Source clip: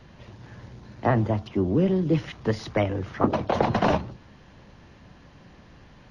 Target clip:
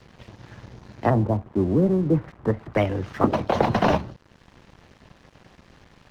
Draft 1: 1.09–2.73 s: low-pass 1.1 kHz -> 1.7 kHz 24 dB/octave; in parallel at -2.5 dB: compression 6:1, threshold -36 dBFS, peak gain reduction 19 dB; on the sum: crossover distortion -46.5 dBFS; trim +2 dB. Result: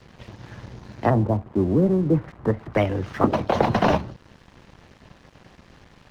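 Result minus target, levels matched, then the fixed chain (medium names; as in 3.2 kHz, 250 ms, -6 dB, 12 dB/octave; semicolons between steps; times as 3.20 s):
compression: peak gain reduction -10 dB
1.09–2.73 s: low-pass 1.1 kHz -> 1.7 kHz 24 dB/octave; in parallel at -2.5 dB: compression 6:1, threshold -48 dBFS, peak gain reduction 29 dB; on the sum: crossover distortion -46.5 dBFS; trim +2 dB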